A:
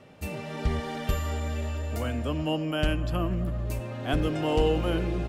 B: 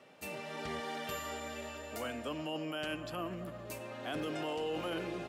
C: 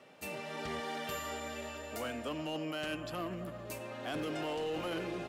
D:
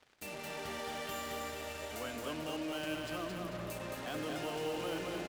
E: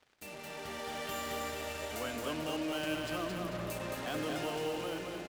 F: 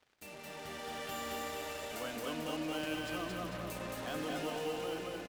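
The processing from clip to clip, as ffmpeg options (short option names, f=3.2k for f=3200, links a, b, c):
-af "highpass=150,lowshelf=f=290:g=-11.5,alimiter=level_in=2dB:limit=-24dB:level=0:latency=1:release=11,volume=-2dB,volume=-3dB"
-af "asoftclip=type=hard:threshold=-33dB,volume=1dB"
-af "alimiter=level_in=15dB:limit=-24dB:level=0:latency=1:release=98,volume=-15dB,aeval=exprs='0.0112*(cos(1*acos(clip(val(0)/0.0112,-1,1)))-cos(1*PI/2))+0.002*(cos(7*acos(clip(val(0)/0.0112,-1,1)))-cos(7*PI/2))':c=same,aecho=1:1:221|442|663|884|1105|1326:0.631|0.284|0.128|0.0575|0.0259|0.0116,volume=3.5dB"
-af "dynaudnorm=f=260:g=7:m=5.5dB,volume=-2.5dB"
-af "aecho=1:1:225:0.531,volume=-3dB"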